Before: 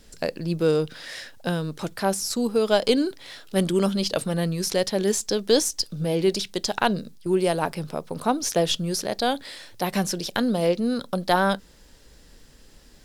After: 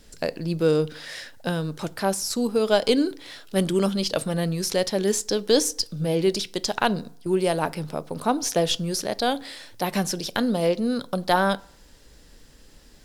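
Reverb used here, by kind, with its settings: FDN reverb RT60 0.6 s, low-frequency decay 0.9×, high-frequency decay 0.6×, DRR 17.5 dB

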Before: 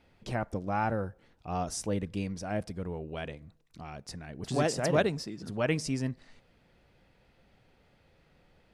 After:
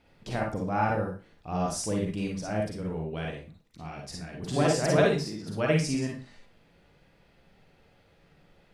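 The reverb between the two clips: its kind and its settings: Schroeder reverb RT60 0.32 s, DRR -1 dB

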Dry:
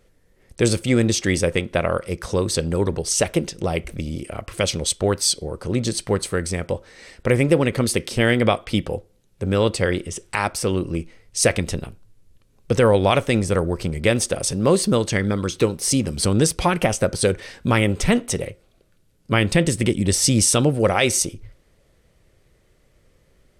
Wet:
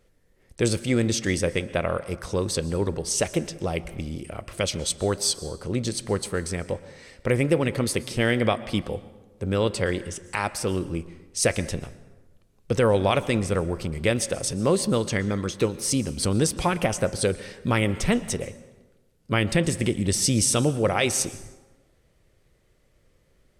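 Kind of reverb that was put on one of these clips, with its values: plate-style reverb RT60 1.2 s, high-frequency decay 0.6×, pre-delay 0.105 s, DRR 16 dB; gain -4.5 dB

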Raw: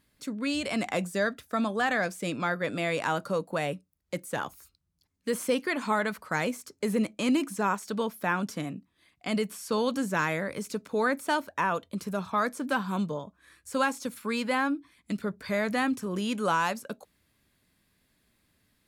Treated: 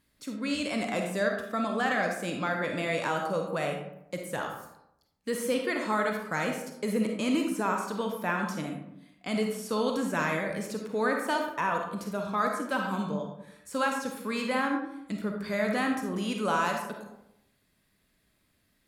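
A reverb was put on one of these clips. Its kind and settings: digital reverb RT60 0.82 s, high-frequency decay 0.5×, pre-delay 10 ms, DRR 2 dB; gain -2.5 dB

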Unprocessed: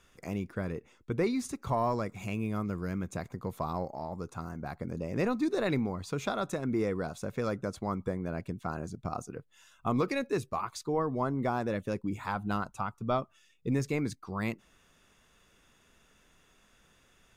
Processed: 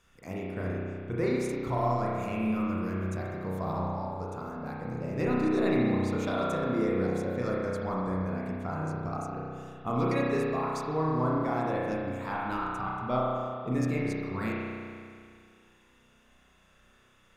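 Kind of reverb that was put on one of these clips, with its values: spring tank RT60 2.2 s, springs 32 ms, chirp 50 ms, DRR -5 dB; gain -3.5 dB

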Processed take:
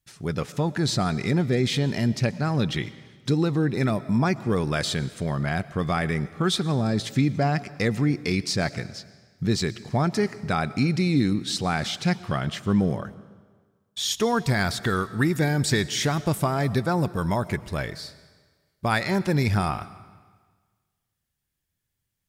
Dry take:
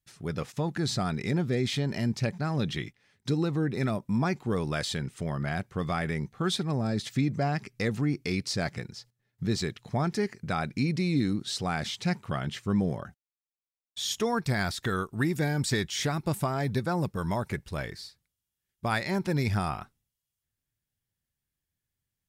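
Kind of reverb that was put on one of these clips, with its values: digital reverb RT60 1.5 s, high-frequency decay 0.95×, pre-delay 75 ms, DRR 17 dB; gain +5 dB

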